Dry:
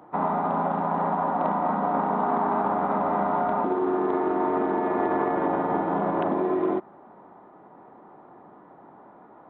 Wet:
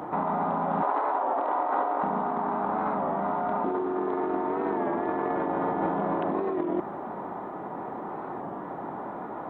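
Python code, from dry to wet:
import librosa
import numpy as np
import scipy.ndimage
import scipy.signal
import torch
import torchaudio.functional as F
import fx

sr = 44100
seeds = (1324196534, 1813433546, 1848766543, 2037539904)

y = fx.steep_highpass(x, sr, hz=300.0, slope=48, at=(0.81, 2.02), fade=0.02)
y = fx.over_compress(y, sr, threshold_db=-33.0, ratio=-1.0)
y = fx.record_warp(y, sr, rpm=33.33, depth_cents=100.0)
y = y * librosa.db_to_amplitude(5.5)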